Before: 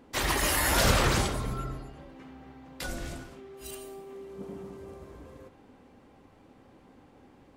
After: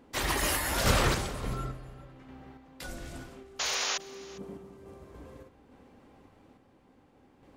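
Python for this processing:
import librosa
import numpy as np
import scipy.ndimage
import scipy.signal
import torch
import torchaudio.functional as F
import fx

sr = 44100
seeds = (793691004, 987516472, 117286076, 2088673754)

p1 = fx.tremolo_random(x, sr, seeds[0], hz=3.5, depth_pct=55)
p2 = fx.rev_spring(p1, sr, rt60_s=3.0, pass_ms=(31,), chirp_ms=55, drr_db=20.0)
p3 = fx.spec_paint(p2, sr, seeds[1], shape='noise', start_s=3.59, length_s=0.39, low_hz=450.0, high_hz=7100.0, level_db=-31.0)
y = p3 + fx.echo_single(p3, sr, ms=404, db=-20.5, dry=0)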